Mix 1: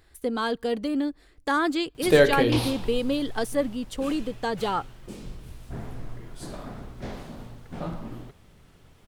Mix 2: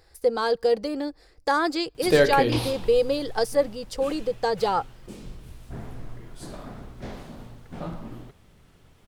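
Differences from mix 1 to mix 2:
speech: add thirty-one-band graphic EQ 250 Hz −11 dB, 500 Hz +9 dB, 800 Hz +6 dB, 3,150 Hz −5 dB, 5,000 Hz +12 dB
background: send off

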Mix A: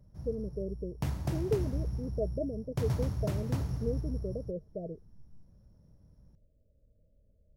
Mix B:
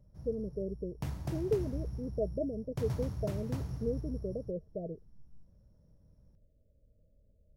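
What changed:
background −7.0 dB
reverb: on

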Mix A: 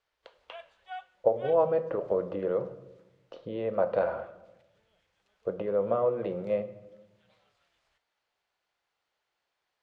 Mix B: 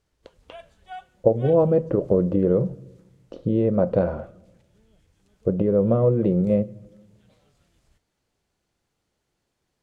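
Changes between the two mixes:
speech: send −10.0 dB
master: remove three-way crossover with the lows and the highs turned down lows −22 dB, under 590 Hz, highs −16 dB, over 4,700 Hz

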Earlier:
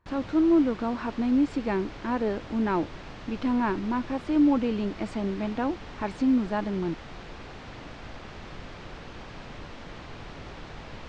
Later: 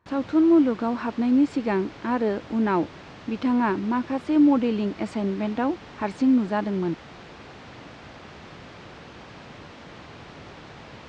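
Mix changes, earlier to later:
speech +3.5 dB
master: add high-pass filter 89 Hz 12 dB per octave

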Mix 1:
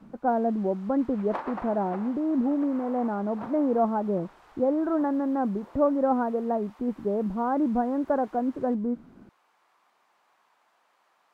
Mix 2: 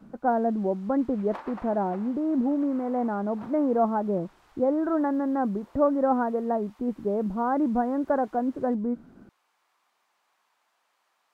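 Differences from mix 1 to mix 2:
background −7.5 dB
master: add high-shelf EQ 2,300 Hz +9 dB

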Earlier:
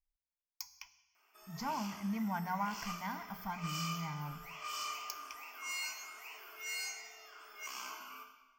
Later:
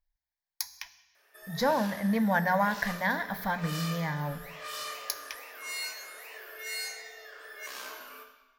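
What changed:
speech +7.5 dB
master: remove phaser with its sweep stopped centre 2,600 Hz, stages 8

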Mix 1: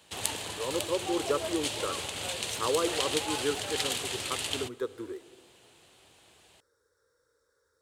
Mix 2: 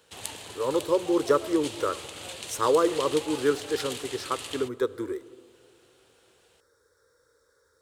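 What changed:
speech +7.0 dB
background −5.0 dB

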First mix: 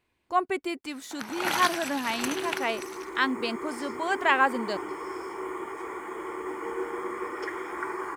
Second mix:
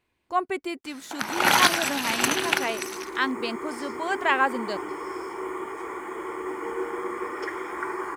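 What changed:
first sound +9.0 dB
reverb: on, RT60 0.50 s

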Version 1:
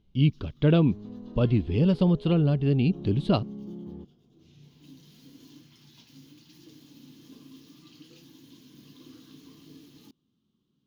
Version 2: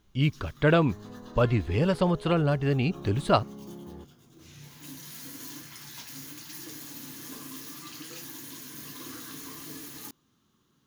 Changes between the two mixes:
first sound +7.5 dB
master: remove drawn EQ curve 100 Hz 0 dB, 200 Hz +6 dB, 410 Hz 0 dB, 600 Hz −5 dB, 1,800 Hz −13 dB, 3,100 Hz 0 dB, 5,100 Hz −5 dB, 8,400 Hz −18 dB, 14,000 Hz −15 dB

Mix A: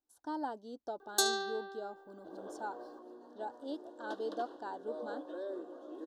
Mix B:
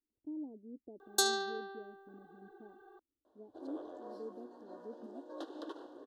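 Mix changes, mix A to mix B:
speech: add inverse Chebyshev low-pass filter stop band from 1,700 Hz, stop band 70 dB
second sound: entry +1.30 s

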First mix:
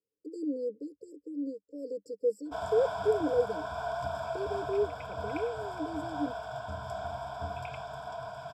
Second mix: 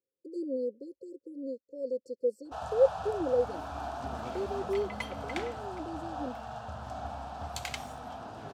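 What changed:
second sound: remove flat-topped band-pass 2,600 Hz, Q 7.9
master: remove EQ curve with evenly spaced ripples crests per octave 1.7, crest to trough 16 dB

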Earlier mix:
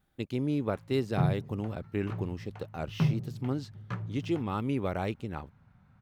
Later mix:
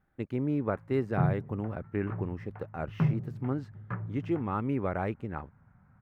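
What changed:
background: add low-pass filter 2,600 Hz 6 dB per octave
master: add high shelf with overshoot 2,600 Hz −13 dB, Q 1.5

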